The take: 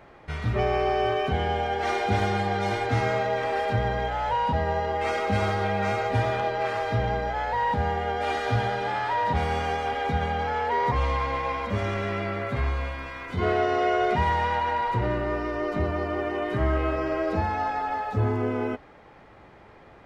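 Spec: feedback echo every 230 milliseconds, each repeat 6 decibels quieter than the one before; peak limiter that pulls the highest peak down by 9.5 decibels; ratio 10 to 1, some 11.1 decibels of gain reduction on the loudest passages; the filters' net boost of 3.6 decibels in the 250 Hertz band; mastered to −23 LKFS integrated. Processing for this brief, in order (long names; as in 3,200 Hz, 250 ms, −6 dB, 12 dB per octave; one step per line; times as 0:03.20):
parametric band 250 Hz +5 dB
downward compressor 10 to 1, threshold −30 dBFS
brickwall limiter −31.5 dBFS
repeating echo 230 ms, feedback 50%, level −6 dB
level +15.5 dB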